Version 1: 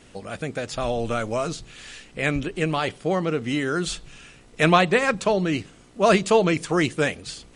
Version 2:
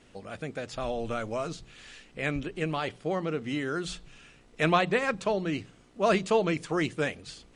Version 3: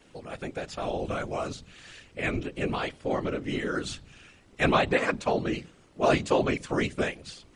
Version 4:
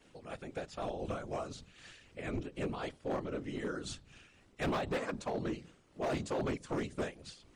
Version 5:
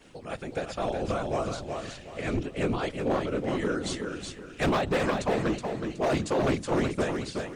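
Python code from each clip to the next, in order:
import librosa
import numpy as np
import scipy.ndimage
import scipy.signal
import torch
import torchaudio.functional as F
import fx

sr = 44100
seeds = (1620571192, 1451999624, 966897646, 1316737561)

y1 = fx.high_shelf(x, sr, hz=8500.0, db=-9.5)
y1 = fx.hum_notches(y1, sr, base_hz=60, count=3)
y1 = y1 * librosa.db_to_amplitude(-6.5)
y2 = fx.whisperise(y1, sr, seeds[0])
y2 = y2 * librosa.db_to_amplitude(1.0)
y3 = fx.dynamic_eq(y2, sr, hz=2400.0, q=1.1, threshold_db=-44.0, ratio=4.0, max_db=-7)
y3 = fx.tremolo_shape(y3, sr, shape='triangle', hz=3.9, depth_pct=55)
y3 = np.clip(10.0 ** (25.5 / 20.0) * y3, -1.0, 1.0) / 10.0 ** (25.5 / 20.0)
y3 = y3 * librosa.db_to_amplitude(-4.5)
y4 = fx.echo_feedback(y3, sr, ms=371, feedback_pct=31, wet_db=-5)
y4 = y4 * librosa.db_to_amplitude(8.5)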